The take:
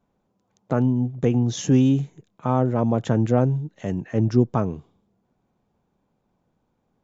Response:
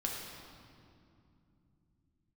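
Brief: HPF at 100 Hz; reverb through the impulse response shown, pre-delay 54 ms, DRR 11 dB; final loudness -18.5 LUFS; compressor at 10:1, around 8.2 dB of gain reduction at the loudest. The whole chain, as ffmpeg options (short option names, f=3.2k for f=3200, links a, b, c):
-filter_complex "[0:a]highpass=100,acompressor=threshold=-20dB:ratio=10,asplit=2[a][b];[1:a]atrim=start_sample=2205,adelay=54[c];[b][c]afir=irnorm=-1:irlink=0,volume=-14dB[d];[a][d]amix=inputs=2:normalize=0,volume=8.5dB"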